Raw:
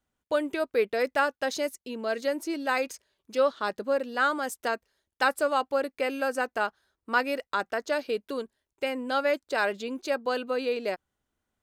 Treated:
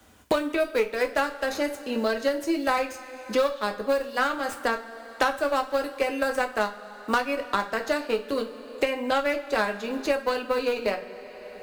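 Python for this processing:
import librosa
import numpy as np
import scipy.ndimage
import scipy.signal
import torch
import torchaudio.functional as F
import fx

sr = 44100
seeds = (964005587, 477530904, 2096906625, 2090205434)

y = fx.tracing_dist(x, sr, depth_ms=0.07)
y = scipy.signal.sosfilt(scipy.signal.butter(2, 60.0, 'highpass', fs=sr, output='sos'), y)
y = fx.cheby_harmonics(y, sr, harmonics=(2, 5, 6, 7), levels_db=(-17, -30, -33, -22), full_scale_db=-11.0)
y = fx.quant_float(y, sr, bits=4)
y = fx.hum_notches(y, sr, base_hz=60, count=4)
y = fx.rev_double_slope(y, sr, seeds[0], early_s=0.23, late_s=1.6, knee_db=-19, drr_db=3.0)
y = fx.band_squash(y, sr, depth_pct=100)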